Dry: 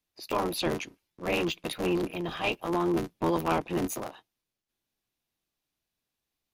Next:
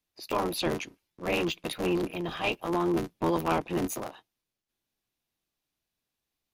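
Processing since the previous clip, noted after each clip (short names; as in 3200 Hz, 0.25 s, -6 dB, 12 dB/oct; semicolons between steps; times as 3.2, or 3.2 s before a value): nothing audible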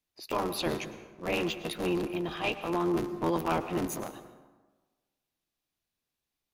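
plate-style reverb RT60 1.3 s, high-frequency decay 0.55×, pre-delay 90 ms, DRR 11.5 dB; gain -2 dB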